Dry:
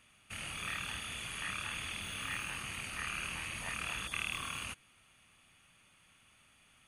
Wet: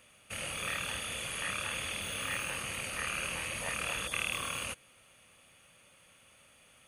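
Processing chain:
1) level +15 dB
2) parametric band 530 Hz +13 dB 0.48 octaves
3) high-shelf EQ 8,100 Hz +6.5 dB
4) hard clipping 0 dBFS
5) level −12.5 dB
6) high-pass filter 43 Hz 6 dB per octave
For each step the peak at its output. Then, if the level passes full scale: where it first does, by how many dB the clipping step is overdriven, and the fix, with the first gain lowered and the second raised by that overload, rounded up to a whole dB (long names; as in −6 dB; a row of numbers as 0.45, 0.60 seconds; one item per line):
−6.0, −5.5, −5.0, −5.0, −17.5, −17.5 dBFS
no step passes full scale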